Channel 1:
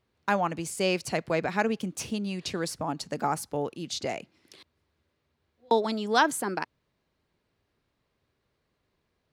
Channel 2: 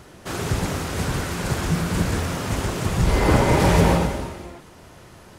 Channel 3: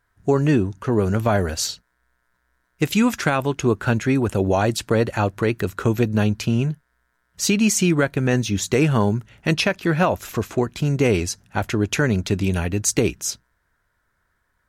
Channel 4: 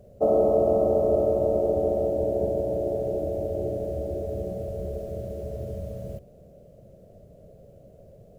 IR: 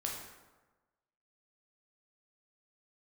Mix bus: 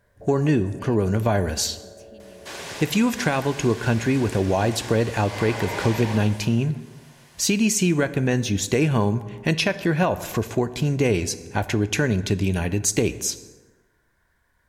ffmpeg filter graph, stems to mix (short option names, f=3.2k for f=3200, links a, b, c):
-filter_complex "[0:a]volume=-19dB[a];[1:a]acrossover=split=6800[b][c];[c]acompressor=threshold=-47dB:ratio=4:attack=1:release=60[d];[b][d]amix=inputs=2:normalize=0,highpass=f=1.4k:p=1,adelay=2200,volume=-0.5dB[e];[2:a]volume=1.5dB,asplit=2[f][g];[g]volume=-11.5dB[h];[3:a]acompressor=threshold=-25dB:ratio=6,volume=-16.5dB[i];[4:a]atrim=start_sample=2205[j];[h][j]afir=irnorm=-1:irlink=0[k];[a][e][f][i][k]amix=inputs=5:normalize=0,bandreject=f=1.3k:w=5.8,acompressor=threshold=-26dB:ratio=1.5"